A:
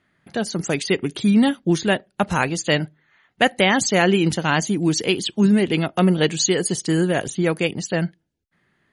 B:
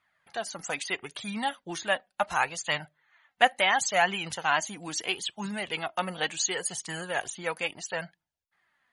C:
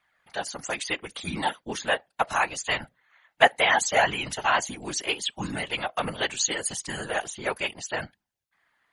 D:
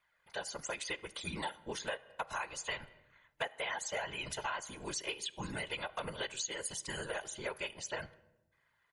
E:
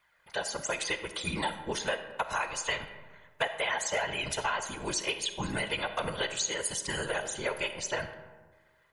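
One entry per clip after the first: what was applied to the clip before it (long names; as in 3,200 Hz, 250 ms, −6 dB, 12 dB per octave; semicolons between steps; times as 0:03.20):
dynamic equaliser 4,700 Hz, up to −5 dB, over −41 dBFS, Q 3.2; flanger 0.73 Hz, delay 0.8 ms, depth 3.4 ms, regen +36%; low shelf with overshoot 530 Hz −12.5 dB, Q 1.5; level −2 dB
random phases in short frames; level +2.5 dB
comb filter 2 ms, depth 42%; on a send at −17 dB: convolution reverb RT60 0.95 s, pre-delay 5 ms; on the sum: downward compressor 6 to 1, threshold −29 dBFS, peak gain reduction 16.5 dB; level −6.5 dB
comb and all-pass reverb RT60 1.4 s, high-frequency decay 0.45×, pre-delay 10 ms, DRR 9.5 dB; level +7 dB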